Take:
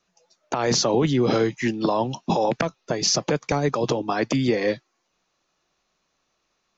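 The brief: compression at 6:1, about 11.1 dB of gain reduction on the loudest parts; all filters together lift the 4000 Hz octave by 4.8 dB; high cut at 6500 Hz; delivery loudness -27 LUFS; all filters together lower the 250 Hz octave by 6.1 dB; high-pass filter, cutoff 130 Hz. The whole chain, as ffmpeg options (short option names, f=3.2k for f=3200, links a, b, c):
-af "highpass=130,lowpass=6.5k,equalizer=f=250:t=o:g=-8,equalizer=f=4k:t=o:g=7.5,acompressor=threshold=-27dB:ratio=6,volume=4dB"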